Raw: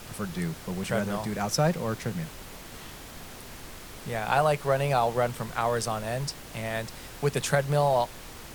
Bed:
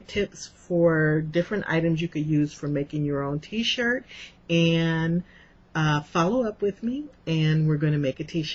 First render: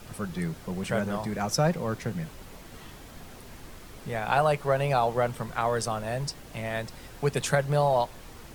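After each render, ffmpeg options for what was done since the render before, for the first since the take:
-af "afftdn=nr=6:nf=-44"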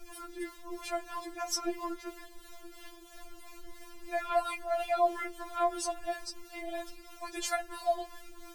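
-filter_complex "[0:a]acrossover=split=530[s0][s1];[s0]aeval=exprs='val(0)*(1-0.5/2+0.5/2*cos(2*PI*3*n/s))':c=same[s2];[s1]aeval=exprs='val(0)*(1-0.5/2-0.5/2*cos(2*PI*3*n/s))':c=same[s3];[s2][s3]amix=inputs=2:normalize=0,afftfilt=real='re*4*eq(mod(b,16),0)':imag='im*4*eq(mod(b,16),0)':win_size=2048:overlap=0.75"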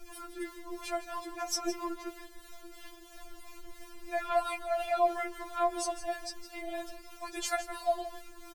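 -af "aecho=1:1:161:0.237"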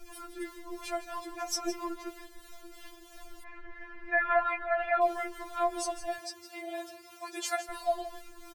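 -filter_complex "[0:a]asplit=3[s0][s1][s2];[s0]afade=t=out:st=3.43:d=0.02[s3];[s1]lowpass=f=1800:t=q:w=5.9,afade=t=in:st=3.43:d=0.02,afade=t=out:st=5:d=0.02[s4];[s2]afade=t=in:st=5:d=0.02[s5];[s3][s4][s5]amix=inputs=3:normalize=0,asettb=1/sr,asplit=3[s6][s7][s8];[s6]atrim=end=6.184[s9];[s7]atrim=start=6.18:end=7.69,asetpts=PTS-STARTPTS,afade=t=in:d=0.004:c=qsin,afade=t=out:st=1.506:d=0.004:c=qsin,highpass=f=77:w=0.5412,highpass=f=77:w=1.3066[s10];[s8]atrim=start=7.686[s11];[s9][s10]acrossfade=d=0.004:c1=hsin:c2=qsin[s12];[s12][s11]acrossfade=d=0.004:c1=qsin:c2=hsin"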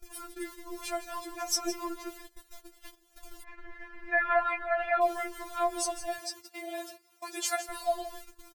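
-af "highshelf=f=5400:g=7.5,agate=range=0.158:threshold=0.00562:ratio=16:detection=peak"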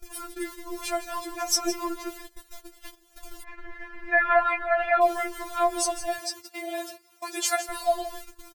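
-af "volume=1.88"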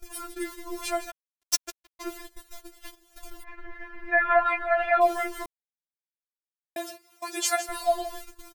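-filter_complex "[0:a]asplit=3[s0][s1][s2];[s0]afade=t=out:st=1.1:d=0.02[s3];[s1]acrusher=bits=2:mix=0:aa=0.5,afade=t=in:st=1.1:d=0.02,afade=t=out:st=1.99:d=0.02[s4];[s2]afade=t=in:st=1.99:d=0.02[s5];[s3][s4][s5]amix=inputs=3:normalize=0,asettb=1/sr,asplit=3[s6][s7][s8];[s6]atrim=end=3.304[s9];[s7]atrim=start=3.3:end=4.46,asetpts=PTS-STARTPTS,afade=t=in:d=0.004:c=qsin,afade=t=out:st=1.156:d=0.004:c=qsin,equalizer=f=7300:t=o:w=2:g=-6.5[s10];[s8]atrim=start=4.456[s11];[s9][s10]acrossfade=d=0.004:c1=hsin:c2=qsin[s12];[s12][s11]acrossfade=d=0.004:c1=qsin:c2=hsin,asplit=3[s13][s14][s15];[s13]atrim=end=5.46,asetpts=PTS-STARTPTS,afade=t=out:st=5.456:d=0.004:c=hsin[s16];[s14]atrim=start=5.46:end=6.76,asetpts=PTS-STARTPTS,volume=0[s17];[s15]atrim=start=6.76,asetpts=PTS-STARTPTS,afade=t=in:d=0.004:c=hsin[s18];[s16][s17][s18]concat=n=3:v=0:a=1"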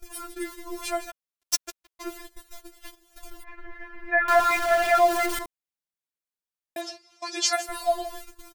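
-filter_complex "[0:a]asettb=1/sr,asplit=3[s0][s1][s2];[s0]atrim=end=4.284[s3];[s1]atrim=start=4.28:end=5.39,asetpts=PTS-STARTPTS,afade=t=in:d=0.004:c=qsin,afade=t=out:st=1.106:d=0.004:c=qsin,aeval=exprs='val(0)+0.5*0.0562*sgn(val(0))':c=same[s4];[s2]atrim=start=5.386[s5];[s3][s4]acrossfade=d=0.004:c1=hsin:c2=qsin[s6];[s6][s5]acrossfade=d=0.004:c1=qsin:c2=hsin,asettb=1/sr,asplit=3[s7][s8][s9];[s7]atrim=end=6.814[s10];[s8]atrim=start=6.81:end=7.53,asetpts=PTS-STARTPTS,afade=t=in:d=0.004:c=qsin,afade=t=out:st=0.716:d=0.004:c=qsin,lowpass=f=5300:t=q:w=2.7[s11];[s9]atrim=start=7.526[s12];[s10][s11]acrossfade=d=0.004:c1=hsin:c2=qsin[s13];[s13][s12]acrossfade=d=0.004:c1=qsin:c2=hsin"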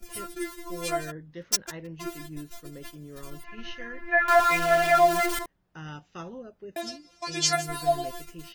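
-filter_complex "[1:a]volume=0.133[s0];[0:a][s0]amix=inputs=2:normalize=0"

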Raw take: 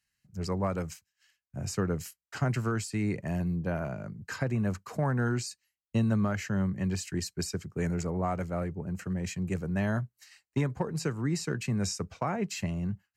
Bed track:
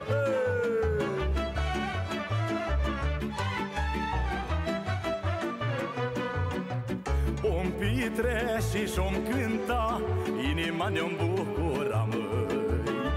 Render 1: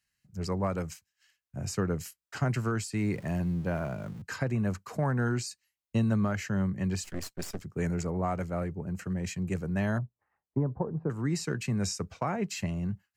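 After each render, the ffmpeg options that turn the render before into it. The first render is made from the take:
-filter_complex "[0:a]asettb=1/sr,asplit=3[s0][s1][s2];[s0]atrim=end=2.974[s3];[s1]atrim=start=2.97:end=4.22,asetpts=PTS-STARTPTS,afade=t=in:d=0.004:c=qsin,afade=t=out:st=1.246:d=0.004:c=qsin,aeval=exprs='val(0)+0.5*0.00422*sgn(val(0))':c=same[s4];[s2]atrim=start=4.216[s5];[s3][s4]acrossfade=d=0.004:c1=hsin:c2=qsin[s6];[s6][s5]acrossfade=d=0.004:c1=qsin:c2=hsin,asettb=1/sr,asplit=3[s7][s8][s9];[s7]atrim=end=7.044[s10];[s8]atrim=start=7.04:end=7.63,asetpts=PTS-STARTPTS,afade=t=in:d=0.004:c=qsin,afade=t=out:st=0.586:d=0.004:c=qsin,aeval=exprs='max(val(0),0)':c=same[s11];[s9]atrim=start=7.626[s12];[s10][s11]acrossfade=d=0.004:c1=hsin:c2=qsin[s13];[s13][s12]acrossfade=d=0.004:c1=qsin:c2=hsin,asettb=1/sr,asplit=3[s14][s15][s16];[s14]atrim=end=9.984[s17];[s15]atrim=start=9.98:end=11.1,asetpts=PTS-STARTPTS,afade=t=in:d=0.004:c=qsin,afade=t=out:st=1.116:d=0.004:c=qsin,lowpass=f=1000:w=0.5412,lowpass=f=1000:w=1.3066[s18];[s16]atrim=start=11.096[s19];[s17][s18]acrossfade=d=0.004:c1=hsin:c2=qsin[s20];[s20][s19]acrossfade=d=0.004:c1=qsin:c2=hsin"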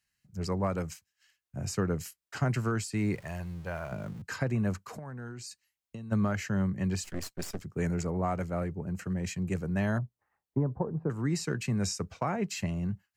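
-filter_complex "[0:a]asettb=1/sr,asplit=3[s0][s1][s2];[s0]atrim=end=3.154[s3];[s1]atrim=start=3.15:end=3.92,asetpts=PTS-STARTPTS,afade=t=in:d=0.004:c=qsin,afade=t=out:st=0.766:d=0.004:c=qsin,equalizer=f=240:w=0.85:g=-15[s4];[s2]atrim=start=3.916[s5];[s3][s4]acrossfade=d=0.004:c1=hsin:c2=qsin[s6];[s6][s5]acrossfade=d=0.004:c1=qsin:c2=hsin,asplit=3[s7][s8][s9];[s7]afade=t=out:st=4.78:d=0.02[s10];[s8]acompressor=threshold=0.0126:ratio=12:attack=3.2:release=140:knee=1:detection=peak,afade=t=in:st=4.78:d=0.02,afade=t=out:st=6.11:d=0.02[s11];[s9]afade=t=in:st=6.11:d=0.02[s12];[s10][s11][s12]amix=inputs=3:normalize=0"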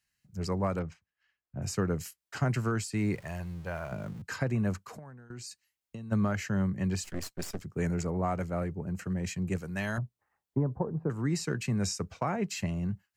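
-filter_complex "[0:a]asettb=1/sr,asplit=3[s0][s1][s2];[s0]atrim=end=0.794[s3];[s1]atrim=start=0.79:end=1.62,asetpts=PTS-STARTPTS,afade=t=in:d=0.004:c=qsin,afade=t=out:st=0.826:d=0.004:c=qsin,adynamicsmooth=sensitivity=4:basefreq=2100[s4];[s2]atrim=start=1.616[s5];[s3][s4]acrossfade=d=0.004:c1=hsin:c2=qsin[s6];[s6][s5]acrossfade=d=0.004:c1=qsin:c2=hsin,asettb=1/sr,asplit=3[s7][s8][s9];[s7]atrim=end=9.584[s10];[s8]atrim=start=9.58:end=9.98,asetpts=PTS-STARTPTS,afade=t=in:d=0.004:c=qsin,afade=t=out:st=0.396:d=0.004:c=qsin,tiltshelf=f=1300:g=-6.5[s11];[s9]atrim=start=9.976[s12];[s10][s11]acrossfade=d=0.004:c1=hsin:c2=qsin[s13];[s13][s12]acrossfade=d=0.004:c1=qsin:c2=hsin,asplit=2[s14][s15];[s14]atrim=end=5.3,asetpts=PTS-STARTPTS,afade=t=out:st=4.78:d=0.52:silence=0.149624[s16];[s15]atrim=start=5.3,asetpts=PTS-STARTPTS,afade=t=in:d=0.004:c=hsin:silence=0.149624[s17];[s16][s17]concat=n=2:v=0:a=1"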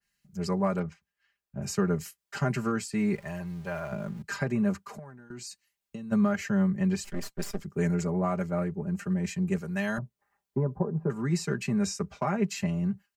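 -af "aecho=1:1:5:0.89,adynamicequalizer=threshold=0.00398:dfrequency=2400:dqfactor=0.7:tfrequency=2400:tqfactor=0.7:attack=5:release=100:ratio=0.375:range=2:mode=cutabove:tftype=highshelf"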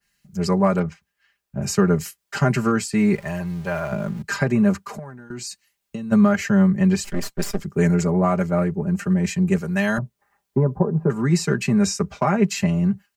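-af "volume=2.82"

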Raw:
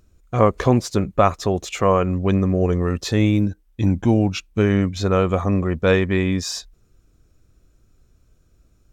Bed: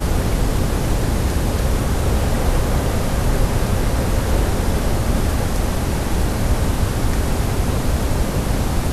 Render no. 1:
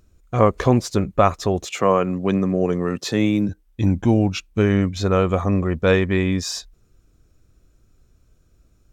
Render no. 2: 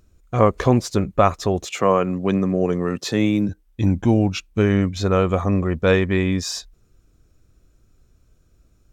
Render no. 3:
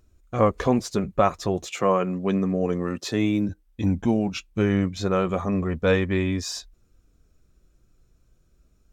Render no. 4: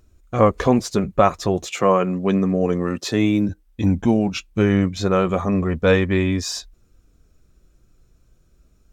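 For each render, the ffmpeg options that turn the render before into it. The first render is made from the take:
-filter_complex "[0:a]asettb=1/sr,asplit=3[s0][s1][s2];[s0]atrim=end=1.654[s3];[s1]atrim=start=1.65:end=3.49,asetpts=PTS-STARTPTS,afade=t=in:d=0.004:c=qsin,afade=t=out:st=1.836:d=0.004:c=qsin,highpass=f=130:w=0.5412,highpass=f=130:w=1.3066[s4];[s2]atrim=start=3.486[s5];[s3][s4]acrossfade=d=0.004:c1=hsin:c2=qsin[s6];[s6][s5]acrossfade=d=0.004:c1=qsin:c2=hsin"
-af anull
-af "flanger=delay=2.8:depth=3.4:regen=-55:speed=0.31:shape=triangular"
-af "volume=1.68"

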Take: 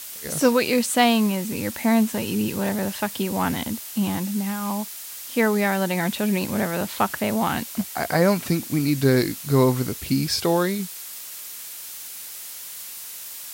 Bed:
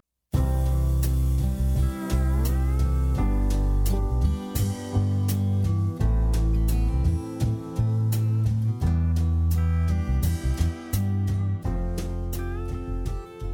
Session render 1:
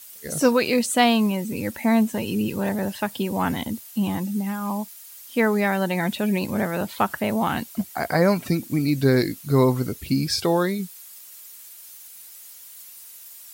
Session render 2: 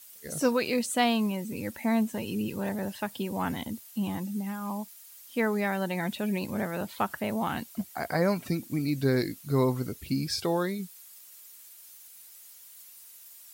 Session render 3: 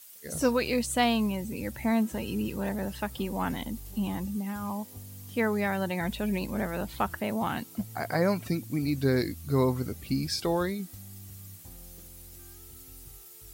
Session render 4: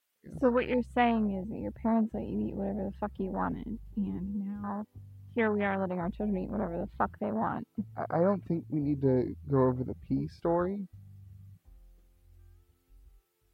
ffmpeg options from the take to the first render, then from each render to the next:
-af "afftdn=nr=11:nf=-37"
-af "volume=0.447"
-filter_complex "[1:a]volume=0.075[s0];[0:a][s0]amix=inputs=2:normalize=0"
-af "afwtdn=0.0282,bass=f=250:g=-3,treble=f=4000:g=-15"

